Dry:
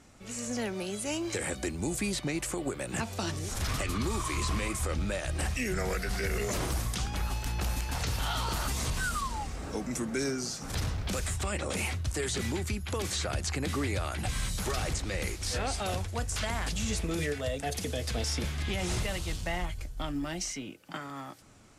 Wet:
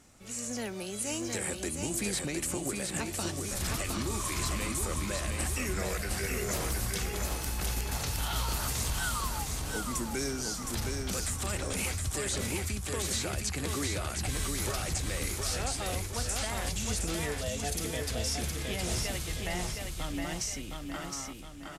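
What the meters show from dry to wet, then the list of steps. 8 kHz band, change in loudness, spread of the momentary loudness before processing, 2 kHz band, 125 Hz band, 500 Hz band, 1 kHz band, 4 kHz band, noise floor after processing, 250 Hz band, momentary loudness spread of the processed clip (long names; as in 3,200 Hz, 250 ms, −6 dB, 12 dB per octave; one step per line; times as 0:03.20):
+3.5 dB, 0.0 dB, 4 LU, −1.0 dB, −2.0 dB, −1.5 dB, −1.5 dB, +0.5 dB, −40 dBFS, −2.0 dB, 4 LU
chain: high-shelf EQ 7,400 Hz +10.5 dB
repeating echo 715 ms, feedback 45%, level −4 dB
level −3.5 dB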